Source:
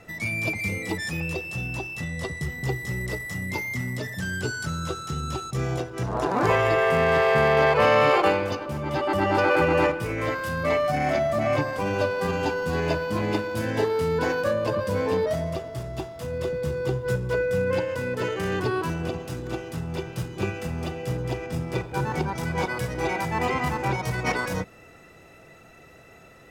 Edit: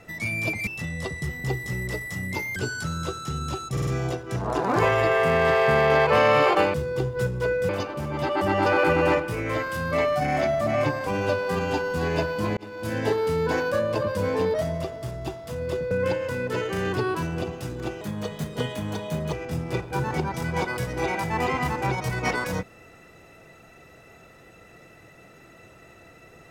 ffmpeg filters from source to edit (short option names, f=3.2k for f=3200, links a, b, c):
-filter_complex "[0:a]asplit=12[a][b][c][d][e][f][g][h][i][j][k][l];[a]atrim=end=0.672[m];[b]atrim=start=1.858:end=3.752[n];[c]atrim=start=4.378:end=5.592[o];[d]atrim=start=5.538:end=5.592[p];[e]atrim=start=5.538:end=5.592[q];[f]atrim=start=5.538:end=8.412[r];[g]atrim=start=16.628:end=17.582[s];[h]atrim=start=8.408:end=13.29,asetpts=PTS-STARTPTS,afade=t=out:st=4.878:d=0.004:c=hsin[t];[i]atrim=start=13.29:end=16.632,asetpts=PTS-STARTPTS,afade=t=in:d=0.39[u];[j]atrim=start=17.578:end=19.684[v];[k]atrim=start=19.68:end=21.34,asetpts=PTS-STARTPTS,asetrate=55566,aresample=44100[w];[l]atrim=start=21.336[x];[m][n]acrossfade=d=0.004:c1=hsin:c2=hsin[y];[y][o]acrossfade=d=0.004:c1=hsin:c2=hsin[z];[z][p]acrossfade=d=0.004:c1=hsin:c2=hsin[aa];[aa][q]acrossfade=d=0.004:c1=hsin:c2=hsin[ab];[ab][r]acrossfade=d=0.004:c1=hsin:c2=hsin[ac];[ac][s]acrossfade=d=0.004:c1=hsin:c2=hsin[ad];[t][u]concat=n=2:v=0:a=1[ae];[ad][ae]acrossfade=d=0.004:c1=hsin:c2=hsin[af];[af][v]acrossfade=d=0.004:c1=hsin:c2=hsin[ag];[ag][w]acrossfade=d=0.004:c1=hsin:c2=hsin[ah];[ah][x]acrossfade=d=0.004:c1=hsin:c2=hsin"